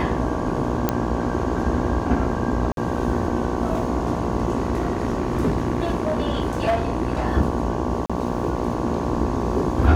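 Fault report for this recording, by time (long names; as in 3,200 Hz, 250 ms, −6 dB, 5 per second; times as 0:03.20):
mains buzz 60 Hz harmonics 19 −27 dBFS
0:00.89: click −6 dBFS
0:02.72–0:02.77: drop-out 52 ms
0:04.57–0:07.22: clipping −15.5 dBFS
0:08.06–0:08.10: drop-out 36 ms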